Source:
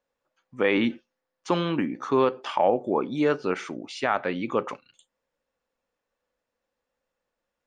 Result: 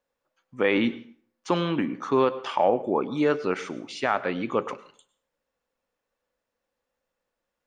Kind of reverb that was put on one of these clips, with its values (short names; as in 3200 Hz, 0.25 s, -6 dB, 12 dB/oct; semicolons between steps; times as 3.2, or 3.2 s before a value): plate-style reverb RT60 0.5 s, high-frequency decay 0.8×, pre-delay 90 ms, DRR 17 dB